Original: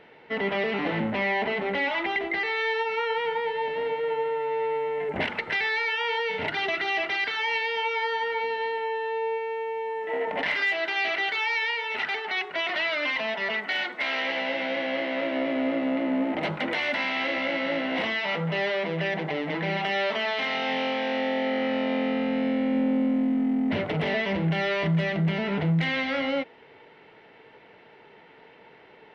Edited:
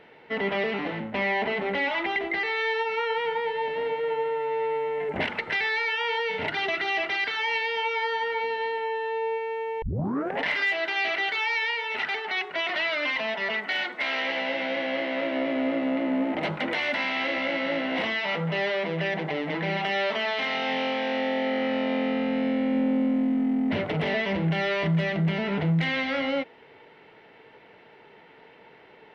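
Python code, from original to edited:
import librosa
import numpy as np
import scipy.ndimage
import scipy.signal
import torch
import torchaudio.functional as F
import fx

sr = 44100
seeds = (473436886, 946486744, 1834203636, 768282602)

y = fx.edit(x, sr, fx.fade_out_to(start_s=0.65, length_s=0.49, floor_db=-10.0),
    fx.tape_start(start_s=9.82, length_s=0.58), tone=tone)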